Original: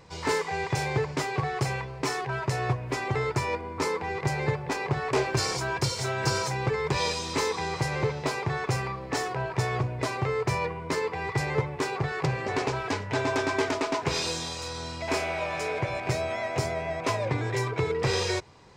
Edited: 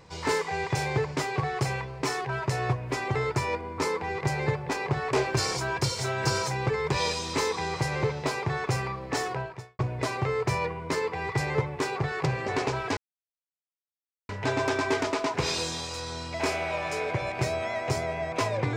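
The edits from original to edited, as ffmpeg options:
ffmpeg -i in.wav -filter_complex "[0:a]asplit=3[link_01][link_02][link_03];[link_01]atrim=end=9.79,asetpts=PTS-STARTPTS,afade=type=out:start_time=9.35:duration=0.44:curve=qua[link_04];[link_02]atrim=start=9.79:end=12.97,asetpts=PTS-STARTPTS,afade=type=in:duration=0.004:curve=hsin,afade=type=out:start_time=3.176:duration=0.004:curve=hsin,apad=pad_dur=1.32[link_05];[link_03]atrim=start=12.97,asetpts=PTS-STARTPTS,afade=type=in:duration=0.004:curve=hsin[link_06];[link_04][link_05][link_06]concat=n=3:v=0:a=1" out.wav

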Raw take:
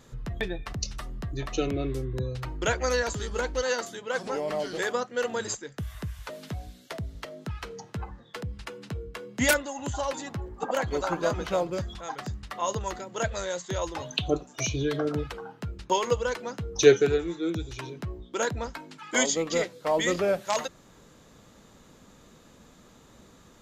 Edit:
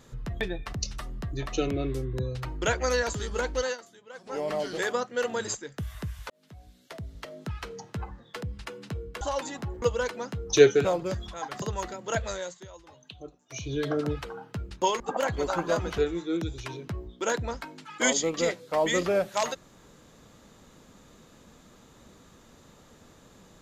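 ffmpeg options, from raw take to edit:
ffmpeg -i in.wav -filter_complex "[0:a]asplit=12[link_01][link_02][link_03][link_04][link_05][link_06][link_07][link_08][link_09][link_10][link_11][link_12];[link_01]atrim=end=3.78,asetpts=PTS-STARTPTS,afade=type=out:start_time=3.64:duration=0.14:silence=0.177828[link_13];[link_02]atrim=start=3.78:end=4.26,asetpts=PTS-STARTPTS,volume=-15dB[link_14];[link_03]atrim=start=4.26:end=6.3,asetpts=PTS-STARTPTS,afade=type=in:duration=0.14:silence=0.177828,afade=type=out:start_time=2.036:duration=0.004:curve=hsin[link_15];[link_04]atrim=start=6.3:end=9.212,asetpts=PTS-STARTPTS,afade=type=in:duration=1.16[link_16];[link_05]atrim=start=9.928:end=10.542[link_17];[link_06]atrim=start=16.078:end=17.112[link_18];[link_07]atrim=start=11.518:end=12.292[link_19];[link_08]atrim=start=12.698:end=13.76,asetpts=PTS-STARTPTS,afade=type=out:start_time=0.642:duration=0.42:silence=0.133352[link_20];[link_09]atrim=start=13.76:end=14.55,asetpts=PTS-STARTPTS,volume=-17.5dB[link_21];[link_10]atrim=start=14.55:end=16.082,asetpts=PTS-STARTPTS,afade=type=in:duration=0.42:silence=0.133352[link_22];[link_11]atrim=start=10.538:end=11.522[link_23];[link_12]atrim=start=17.108[link_24];[link_13][link_14][link_15][link_16]concat=n=4:v=0:a=1[link_25];[link_25][link_17]acrossfade=duration=0.004:curve1=hsin:curve2=hsin[link_26];[link_26][link_18]acrossfade=duration=0.004:curve1=hsin:curve2=hsin[link_27];[link_27][link_19]acrossfade=duration=0.004:curve1=hsin:curve2=hsin[link_28];[link_20][link_21][link_22]concat=n=3:v=0:a=1[link_29];[link_28][link_29]acrossfade=duration=0.004:curve1=hsin:curve2=hsin[link_30];[link_30][link_23]acrossfade=duration=0.004:curve1=hsin:curve2=hsin[link_31];[link_31][link_24]acrossfade=duration=0.004:curve1=hsin:curve2=hsin" out.wav

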